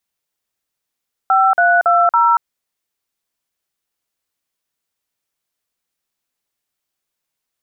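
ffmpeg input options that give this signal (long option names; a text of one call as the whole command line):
ffmpeg -f lavfi -i "aevalsrc='0.251*clip(min(mod(t,0.279),0.233-mod(t,0.279))/0.002,0,1)*(eq(floor(t/0.279),0)*(sin(2*PI*770*mod(t,0.279))+sin(2*PI*1336*mod(t,0.279)))+eq(floor(t/0.279),1)*(sin(2*PI*697*mod(t,0.279))+sin(2*PI*1477*mod(t,0.279)))+eq(floor(t/0.279),2)*(sin(2*PI*697*mod(t,0.279))+sin(2*PI*1336*mod(t,0.279)))+eq(floor(t/0.279),3)*(sin(2*PI*941*mod(t,0.279))+sin(2*PI*1336*mod(t,0.279))))':duration=1.116:sample_rate=44100" out.wav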